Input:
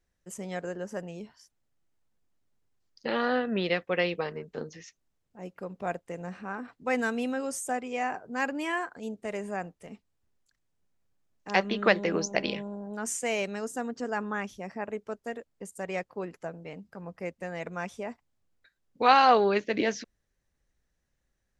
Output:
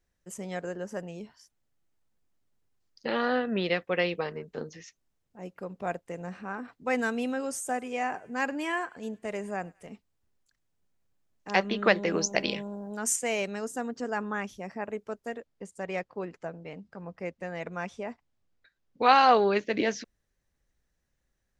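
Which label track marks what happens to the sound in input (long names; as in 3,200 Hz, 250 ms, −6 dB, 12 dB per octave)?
7.170000	9.870000	feedback echo with a high-pass in the loop 102 ms, feedback 61%, high-pass 1,100 Hz, level −24 dB
12.070000	13.160000	high-shelf EQ 5,200 Hz +9 dB
15.350000	19.130000	low-pass filter 6,200 Hz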